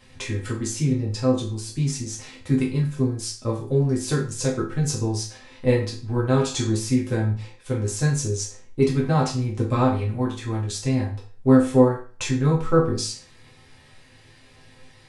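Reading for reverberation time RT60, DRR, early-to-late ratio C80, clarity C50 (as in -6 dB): 0.40 s, -5.0 dB, 13.0 dB, 7.5 dB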